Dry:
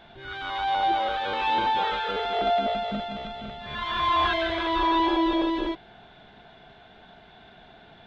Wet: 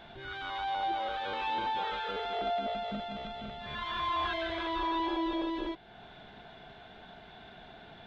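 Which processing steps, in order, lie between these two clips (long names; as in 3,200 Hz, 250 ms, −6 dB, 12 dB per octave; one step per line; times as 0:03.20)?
downward compressor 1.5 to 1, threshold −46 dBFS, peak gain reduction 9.5 dB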